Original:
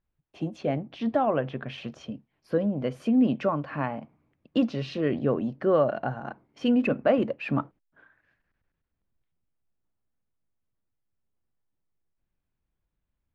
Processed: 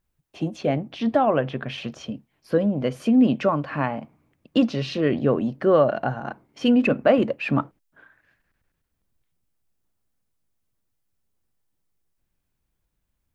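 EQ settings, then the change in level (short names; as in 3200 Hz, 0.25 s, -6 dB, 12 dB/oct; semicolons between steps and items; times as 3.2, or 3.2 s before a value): high shelf 4100 Hz +7 dB; +4.5 dB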